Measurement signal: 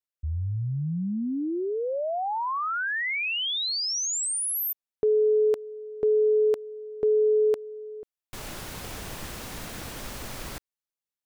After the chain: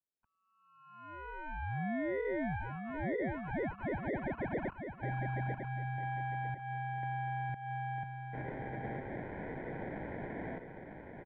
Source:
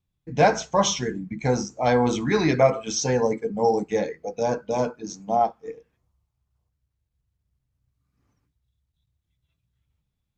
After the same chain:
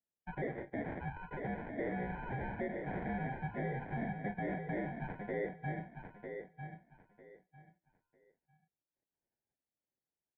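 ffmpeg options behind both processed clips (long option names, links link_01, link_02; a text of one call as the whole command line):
ffmpeg -i in.wav -filter_complex "[0:a]afftdn=noise_reduction=16:noise_floor=-43,highpass=frequency=260:width=0.5412,highpass=frequency=260:width=1.3066,acompressor=threshold=-34dB:ratio=20:attack=5.8:release=180:knee=1:detection=rms,acrusher=samples=29:mix=1:aa=0.000001,asoftclip=type=tanh:threshold=-37dB,asplit=2[link_01][link_02];[link_02]aecho=0:1:950|1900|2850:0.473|0.104|0.0229[link_03];[link_01][link_03]amix=inputs=2:normalize=0,highpass=frequency=420:width_type=q:width=0.5412,highpass=frequency=420:width_type=q:width=1.307,lowpass=frequency=2400:width_type=q:width=0.5176,lowpass=frequency=2400:width_type=q:width=0.7071,lowpass=frequency=2400:width_type=q:width=1.932,afreqshift=-300,volume=5.5dB" out.wav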